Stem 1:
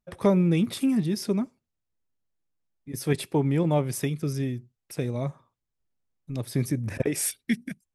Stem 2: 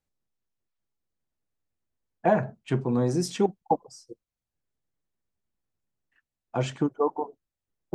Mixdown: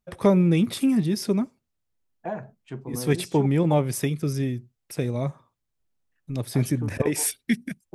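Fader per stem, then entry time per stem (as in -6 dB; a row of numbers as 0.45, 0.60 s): +2.5, -10.0 dB; 0.00, 0.00 s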